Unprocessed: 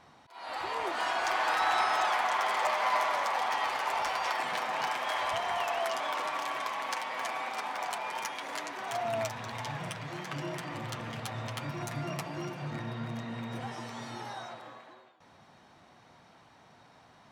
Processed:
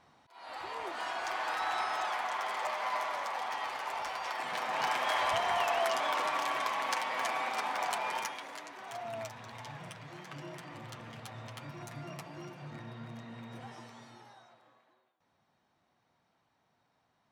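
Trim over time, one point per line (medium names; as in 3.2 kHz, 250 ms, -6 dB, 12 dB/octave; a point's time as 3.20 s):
4.29 s -6 dB
4.95 s +1.5 dB
8.14 s +1.5 dB
8.56 s -8 dB
13.78 s -8 dB
14.45 s -17 dB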